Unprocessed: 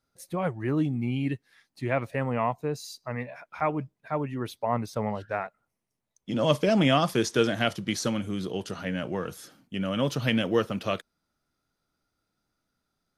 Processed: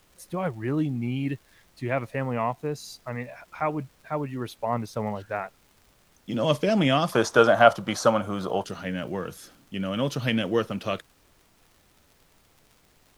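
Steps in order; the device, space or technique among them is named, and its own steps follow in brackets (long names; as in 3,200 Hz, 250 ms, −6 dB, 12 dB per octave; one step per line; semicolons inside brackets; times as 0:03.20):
0:07.12–0:08.64: flat-topped bell 870 Hz +14.5 dB
vinyl LP (surface crackle; pink noise bed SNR 34 dB)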